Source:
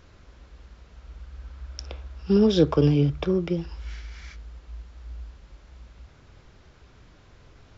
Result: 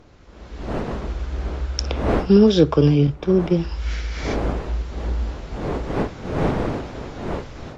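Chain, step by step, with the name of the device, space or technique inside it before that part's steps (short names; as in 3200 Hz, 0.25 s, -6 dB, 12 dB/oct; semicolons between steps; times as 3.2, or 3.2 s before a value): 3.07–3.6 expander -23 dBFS; smartphone video outdoors (wind noise 490 Hz -41 dBFS; AGC gain up to 15.5 dB; gain -1 dB; AAC 48 kbps 32000 Hz)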